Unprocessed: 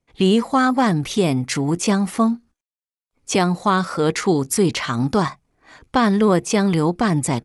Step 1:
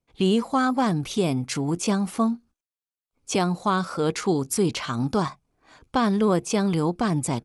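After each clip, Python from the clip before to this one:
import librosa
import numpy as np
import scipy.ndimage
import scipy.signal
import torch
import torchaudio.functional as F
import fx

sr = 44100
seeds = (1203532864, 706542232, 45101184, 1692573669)

y = fx.peak_eq(x, sr, hz=1900.0, db=-7.0, octaves=0.29)
y = y * librosa.db_to_amplitude(-5.0)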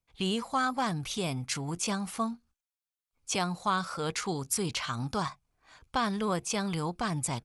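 y = fx.peak_eq(x, sr, hz=310.0, db=-11.0, octaves=2.1)
y = y * librosa.db_to_amplitude(-2.0)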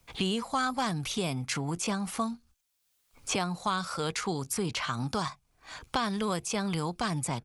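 y = fx.band_squash(x, sr, depth_pct=70)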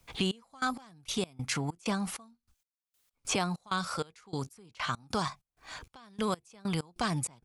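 y = fx.step_gate(x, sr, bpm=97, pattern='xx..x..x.xx.', floor_db=-24.0, edge_ms=4.5)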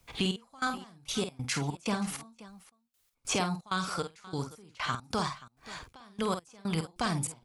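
y = fx.echo_multitap(x, sr, ms=(49, 529), db=(-8.0, -18.5))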